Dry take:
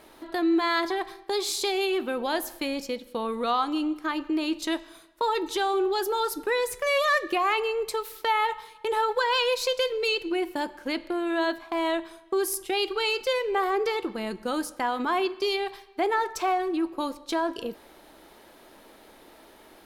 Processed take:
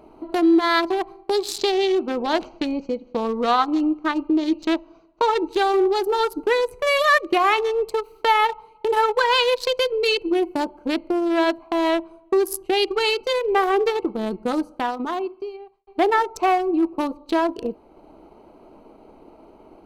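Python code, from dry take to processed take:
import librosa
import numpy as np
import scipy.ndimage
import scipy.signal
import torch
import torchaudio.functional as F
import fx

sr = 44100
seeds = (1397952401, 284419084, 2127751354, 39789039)

y = fx.resample_bad(x, sr, factor=3, down='none', up='filtered', at=(1.58, 5.48))
y = fx.edit(y, sr, fx.fade_out_span(start_s=14.49, length_s=1.38), tone=tone)
y = fx.wiener(y, sr, points=25)
y = fx.transient(y, sr, attack_db=1, sustain_db=-4)
y = fx.notch(y, sr, hz=540.0, q=12.0)
y = y * librosa.db_to_amplitude(7.5)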